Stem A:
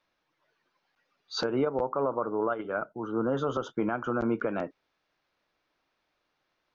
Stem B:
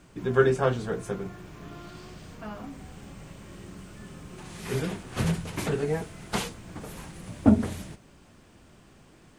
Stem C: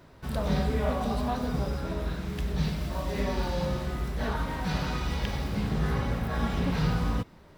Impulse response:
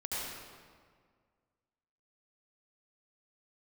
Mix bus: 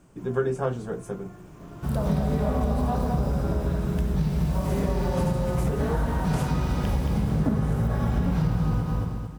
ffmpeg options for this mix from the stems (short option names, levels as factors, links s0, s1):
-filter_complex "[1:a]equalizer=f=110:t=o:w=1:g=-7.5,volume=0.891[s0];[2:a]adelay=1600,volume=1.26,asplit=3[s1][s2][s3];[s2]volume=0.376[s4];[s3]volume=0.668[s5];[3:a]atrim=start_sample=2205[s6];[s4][s6]afir=irnorm=-1:irlink=0[s7];[s5]aecho=0:1:224|448|672|896|1120|1344:1|0.44|0.194|0.0852|0.0375|0.0165[s8];[s0][s1][s7][s8]amix=inputs=4:normalize=0,equalizer=f=125:t=o:w=1:g=7,equalizer=f=2000:t=o:w=1:g=-6,equalizer=f=4000:t=o:w=1:g=-8,acompressor=threshold=0.1:ratio=6"